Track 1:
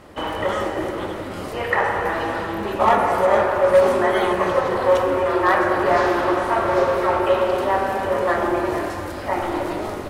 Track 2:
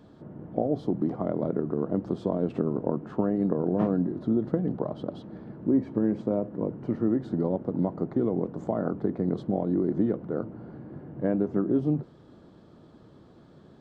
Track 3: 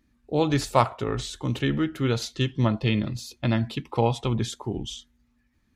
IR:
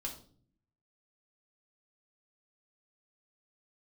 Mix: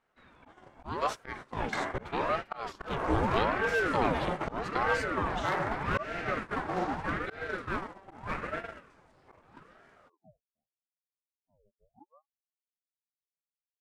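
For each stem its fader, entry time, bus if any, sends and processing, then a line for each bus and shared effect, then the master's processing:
-9.5 dB, 0.00 s, no send, low-pass 9 kHz 24 dB/octave; one-sided clip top -13 dBFS, bottom -12 dBFS
-0.5 dB, 0.25 s, no send, spectral contrast expander 4:1
-3.0 dB, 0.50 s, no send, treble shelf 4.6 kHz -7.5 dB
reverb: none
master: gate -29 dBFS, range -20 dB; slow attack 248 ms; ring modulator with a swept carrier 610 Hz, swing 70%, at 0.81 Hz

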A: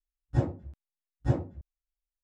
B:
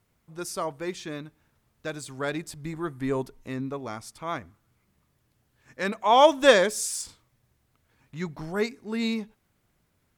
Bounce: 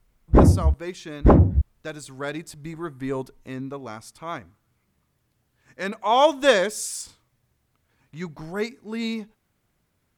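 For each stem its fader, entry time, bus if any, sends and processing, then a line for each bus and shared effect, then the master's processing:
-7.0 dB, 0.00 s, no send, tone controls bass +14 dB, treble -10 dB; sine folder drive 15 dB, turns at -0.5 dBFS
-0.5 dB, 0.00 s, no send, none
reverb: none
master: none

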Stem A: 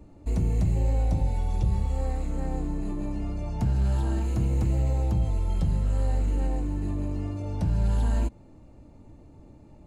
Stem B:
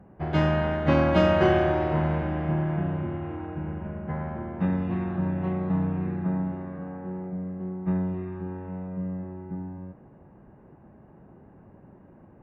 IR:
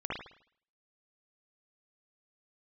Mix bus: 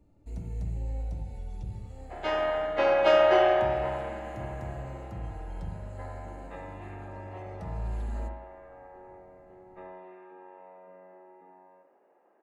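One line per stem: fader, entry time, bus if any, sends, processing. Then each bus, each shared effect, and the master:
-16.5 dB, 0.00 s, send -6 dB, none
0.0 dB, 1.90 s, send -9 dB, high-pass 430 Hz 24 dB/octave; band-stop 1.5 kHz, Q 16; upward expansion 1.5:1, over -37 dBFS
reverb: on, pre-delay 52 ms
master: band-stop 1.1 kHz, Q 13

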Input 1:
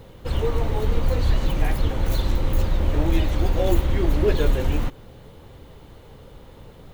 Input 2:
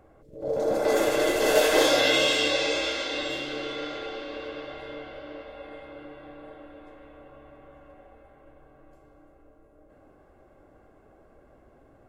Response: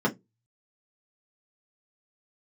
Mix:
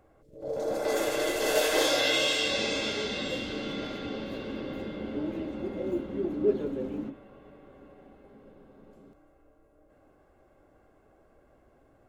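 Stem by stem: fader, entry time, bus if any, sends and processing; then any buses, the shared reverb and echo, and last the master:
-2.5 dB, 2.20 s, send -14 dB, band-pass filter 320 Hz, Q 2.2; tilt EQ +2 dB/octave
-5.5 dB, 0.00 s, no send, treble shelf 5 kHz -5 dB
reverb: on, RT60 0.15 s, pre-delay 3 ms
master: treble shelf 3.4 kHz +8.5 dB

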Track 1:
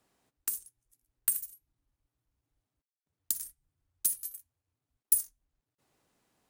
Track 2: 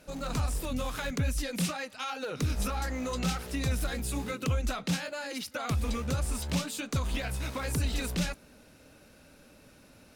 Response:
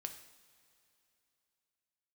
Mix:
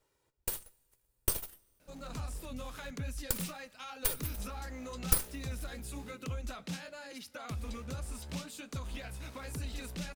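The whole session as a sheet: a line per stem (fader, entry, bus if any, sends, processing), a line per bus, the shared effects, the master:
-3.5 dB, 0.00 s, send -10.5 dB, comb filter that takes the minimum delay 2.1 ms; bass shelf 480 Hz +4.5 dB
-11.5 dB, 1.80 s, send -9 dB, none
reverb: on, pre-delay 3 ms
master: none

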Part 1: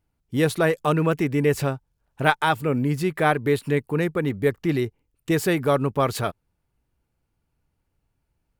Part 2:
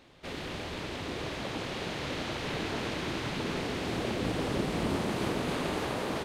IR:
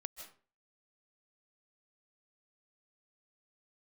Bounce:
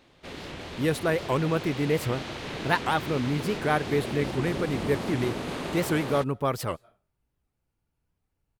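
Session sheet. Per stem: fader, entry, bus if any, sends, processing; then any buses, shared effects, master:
-5.5 dB, 0.45 s, send -20 dB, none
-1.5 dB, 0.00 s, send -22.5 dB, none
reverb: on, RT60 0.40 s, pre-delay 115 ms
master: warped record 78 rpm, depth 250 cents

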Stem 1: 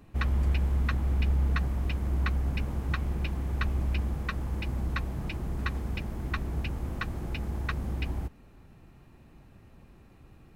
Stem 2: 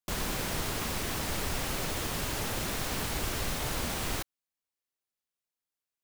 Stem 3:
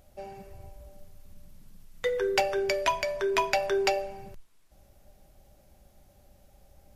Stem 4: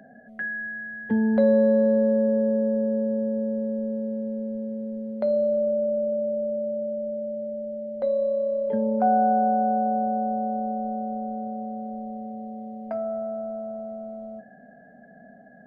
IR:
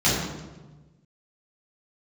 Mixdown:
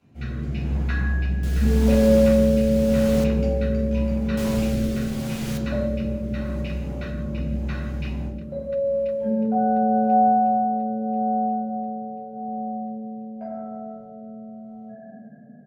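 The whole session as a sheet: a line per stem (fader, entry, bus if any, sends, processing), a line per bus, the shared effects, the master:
-6.0 dB, 0.00 s, send -5.5 dB, echo send -3.5 dB, high-pass 170 Hz 6 dB/octave
+2.0 dB, 1.35 s, muted 3.24–4.37 s, send -21.5 dB, echo send -21 dB, none
-19.5 dB, 1.05 s, send -10 dB, no echo send, none
-5.5 dB, 0.50 s, send -9.5 dB, no echo send, none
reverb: on, RT60 1.2 s, pre-delay 3 ms
echo: feedback delay 1037 ms, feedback 42%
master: rotary cabinet horn 0.85 Hz; flange 0.19 Hz, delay 7.8 ms, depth 5.4 ms, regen -50%

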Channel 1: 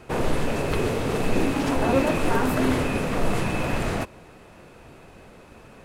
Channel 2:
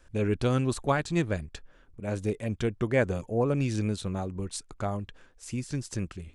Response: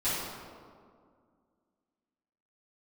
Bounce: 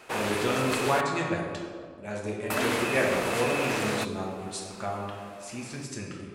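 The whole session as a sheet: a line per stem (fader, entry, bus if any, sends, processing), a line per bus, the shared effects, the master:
+2.5 dB, 0.00 s, muted 1.01–2.50 s, no send, none
0.0 dB, 0.00 s, send -4.5 dB, tilt EQ -1.5 dB/octave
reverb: on, RT60 2.0 s, pre-delay 5 ms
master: high-pass 1.2 kHz 6 dB/octave

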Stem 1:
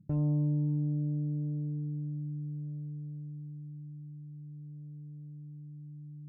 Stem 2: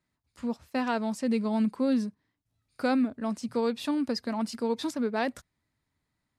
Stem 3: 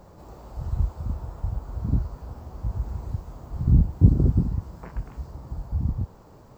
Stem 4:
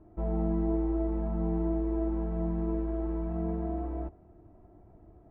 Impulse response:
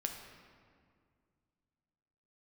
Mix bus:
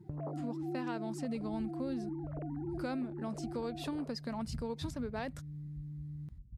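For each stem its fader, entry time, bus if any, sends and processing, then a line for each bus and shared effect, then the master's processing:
0.0 dB, 0.00 s, no send, compression, threshold -40 dBFS, peak gain reduction 13 dB; high-pass 47 Hz; bass shelf 100 Hz +9 dB
-1.0 dB, 0.00 s, no send, none
-18.5 dB, 0.80 s, no send, inverse Chebyshev low-pass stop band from 670 Hz, stop band 50 dB
-5.0 dB, 0.00 s, no send, formants replaced by sine waves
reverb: none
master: compression 3:1, threshold -38 dBFS, peak gain reduction 12.5 dB

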